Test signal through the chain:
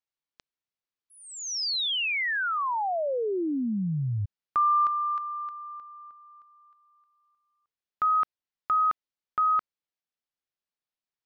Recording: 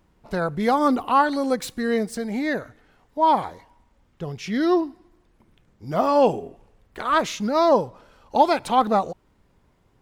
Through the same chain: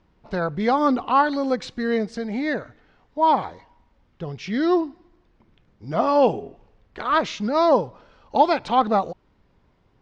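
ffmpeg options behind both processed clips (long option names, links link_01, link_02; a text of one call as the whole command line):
ffmpeg -i in.wav -af "lowpass=frequency=5500:width=0.5412,lowpass=frequency=5500:width=1.3066" out.wav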